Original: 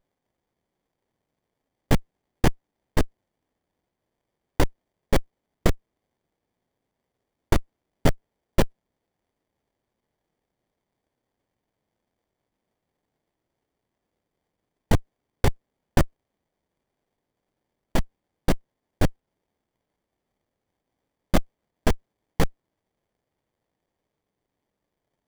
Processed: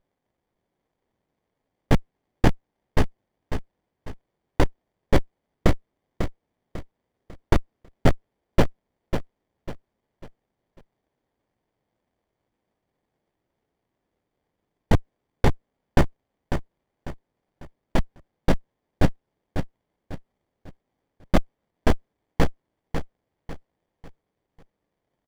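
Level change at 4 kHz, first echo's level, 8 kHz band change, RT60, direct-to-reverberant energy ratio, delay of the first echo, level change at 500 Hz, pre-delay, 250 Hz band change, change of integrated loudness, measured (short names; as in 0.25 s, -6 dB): -1.0 dB, -8.0 dB, -5.0 dB, none, none, 0.547 s, +2.0 dB, none, +2.5 dB, +0.5 dB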